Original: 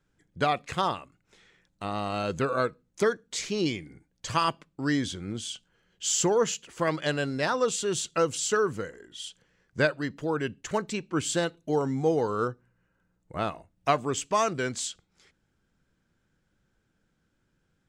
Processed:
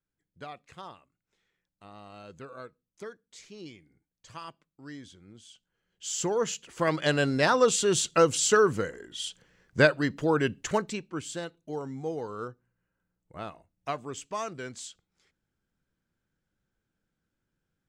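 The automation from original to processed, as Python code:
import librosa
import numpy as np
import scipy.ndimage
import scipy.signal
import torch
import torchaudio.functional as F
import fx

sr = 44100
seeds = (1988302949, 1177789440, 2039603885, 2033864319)

y = fx.gain(x, sr, db=fx.line((5.44, -17.0), (6.24, -5.0), (7.25, 4.0), (10.64, 4.0), (11.26, -9.0)))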